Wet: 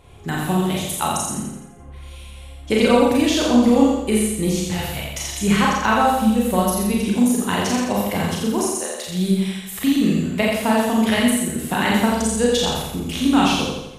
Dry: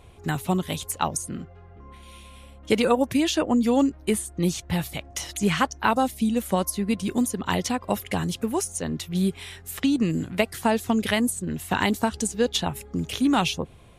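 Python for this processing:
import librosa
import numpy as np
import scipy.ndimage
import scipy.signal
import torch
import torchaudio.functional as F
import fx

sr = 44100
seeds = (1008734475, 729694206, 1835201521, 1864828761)

p1 = fx.highpass(x, sr, hz=fx.line((8.61, 210.0), (9.06, 720.0)), slope=24, at=(8.61, 9.06), fade=0.02)
p2 = p1 + fx.echo_feedback(p1, sr, ms=85, feedback_pct=51, wet_db=-3.5, dry=0)
y = fx.rev_schroeder(p2, sr, rt60_s=0.33, comb_ms=29, drr_db=-1.0)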